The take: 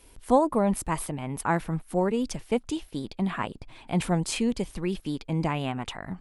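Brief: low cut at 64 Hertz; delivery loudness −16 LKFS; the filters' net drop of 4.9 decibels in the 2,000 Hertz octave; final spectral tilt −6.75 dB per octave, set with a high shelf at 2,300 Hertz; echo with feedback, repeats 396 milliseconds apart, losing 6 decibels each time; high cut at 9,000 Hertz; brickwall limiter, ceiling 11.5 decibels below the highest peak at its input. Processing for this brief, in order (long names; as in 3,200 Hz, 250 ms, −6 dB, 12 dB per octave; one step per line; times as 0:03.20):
high-pass filter 64 Hz
low-pass filter 9,000 Hz
parametric band 2,000 Hz −3 dB
high-shelf EQ 2,300 Hz −6.5 dB
brickwall limiter −21 dBFS
repeating echo 396 ms, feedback 50%, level −6 dB
level +15.5 dB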